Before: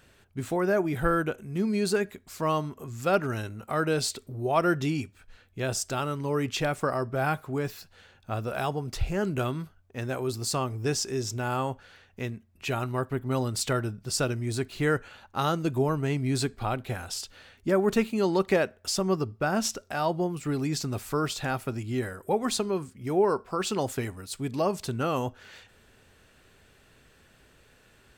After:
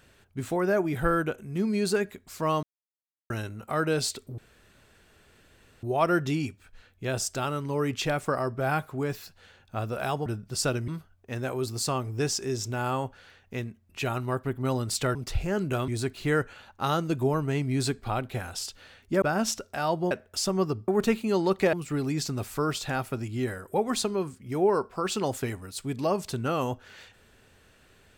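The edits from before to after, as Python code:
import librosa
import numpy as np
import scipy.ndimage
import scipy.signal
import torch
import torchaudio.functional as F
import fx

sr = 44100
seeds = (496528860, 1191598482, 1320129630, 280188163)

y = fx.edit(x, sr, fx.silence(start_s=2.63, length_s=0.67),
    fx.insert_room_tone(at_s=4.38, length_s=1.45),
    fx.swap(start_s=8.81, length_s=0.73, other_s=13.81, other_length_s=0.62),
    fx.swap(start_s=17.77, length_s=0.85, other_s=19.39, other_length_s=0.89), tone=tone)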